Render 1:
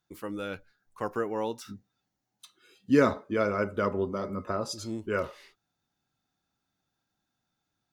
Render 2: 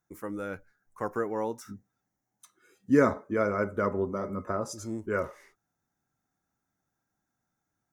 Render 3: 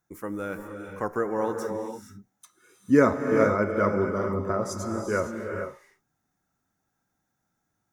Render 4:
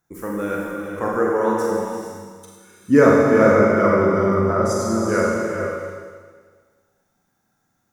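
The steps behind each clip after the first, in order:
flat-topped bell 3,500 Hz −13 dB 1.1 octaves
reverb whose tail is shaped and stops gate 490 ms rising, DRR 4 dB; level +3 dB
four-comb reverb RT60 1.6 s, combs from 32 ms, DRR −2.5 dB; level +4 dB

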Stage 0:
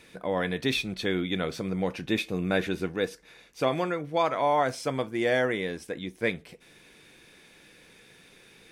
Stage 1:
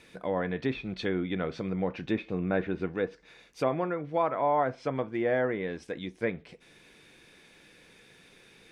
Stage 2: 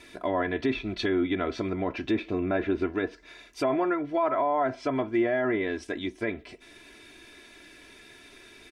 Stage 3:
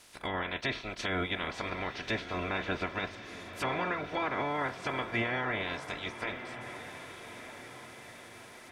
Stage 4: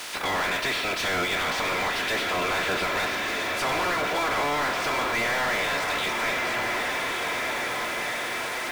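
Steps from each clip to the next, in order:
treble cut that deepens with the level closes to 1,600 Hz, closed at −24 dBFS; high-shelf EQ 9,100 Hz −5.5 dB; level −1.5 dB
comb filter 3 ms, depth 86%; brickwall limiter −20.5 dBFS, peak gain reduction 8.5 dB; level +3.5 dB
ceiling on every frequency bin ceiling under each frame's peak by 25 dB; feedback delay with all-pass diffusion 1,233 ms, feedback 54%, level −11 dB; level −6.5 dB
mid-hump overdrive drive 33 dB, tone 3,900 Hz, clips at −18.5 dBFS; bit reduction 7 bits; convolution reverb RT60 1.1 s, pre-delay 63 ms, DRR 10 dB; level −1 dB

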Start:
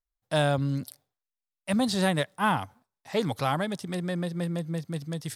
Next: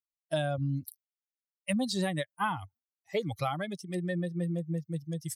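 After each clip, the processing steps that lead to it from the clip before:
spectral dynamics exaggerated over time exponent 2
high-pass filter 48 Hz 12 dB per octave
downward compressor 6 to 1, threshold −33 dBFS, peak gain reduction 11 dB
level +5.5 dB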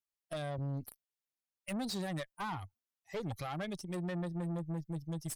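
brickwall limiter −25 dBFS, peak gain reduction 8 dB
tube saturation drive 35 dB, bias 0.5
level +1 dB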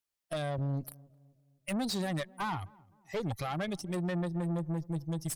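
feedback echo with a low-pass in the loop 258 ms, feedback 48%, low-pass 890 Hz, level −23 dB
level +4.5 dB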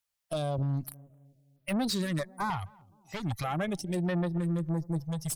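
notch on a step sequencer 3.2 Hz 310–7,200 Hz
level +3.5 dB

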